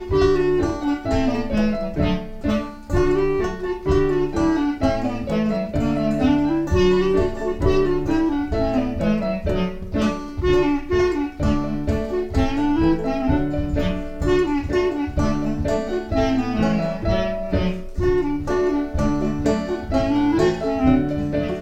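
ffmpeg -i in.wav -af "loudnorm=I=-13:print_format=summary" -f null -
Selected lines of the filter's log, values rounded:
Input Integrated:    -21.2 LUFS
Input True Peak:      -5.9 dBTP
Input LRA:             1.9 LU
Input Threshold:     -31.2 LUFS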